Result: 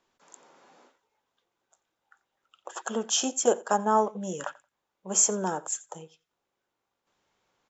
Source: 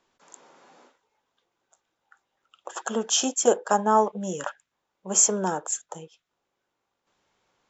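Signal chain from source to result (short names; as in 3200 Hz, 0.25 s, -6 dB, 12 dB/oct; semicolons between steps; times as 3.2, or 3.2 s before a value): feedback echo 88 ms, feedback 15%, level -22 dB; gain -3 dB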